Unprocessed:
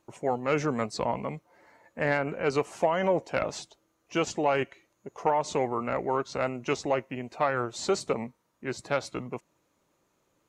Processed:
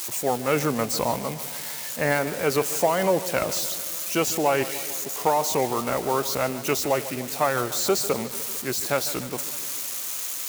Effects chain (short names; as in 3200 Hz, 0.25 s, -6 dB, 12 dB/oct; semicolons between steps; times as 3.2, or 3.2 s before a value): switching spikes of -25 dBFS; warbling echo 0.149 s, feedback 66%, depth 70 cents, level -15 dB; gain +3.5 dB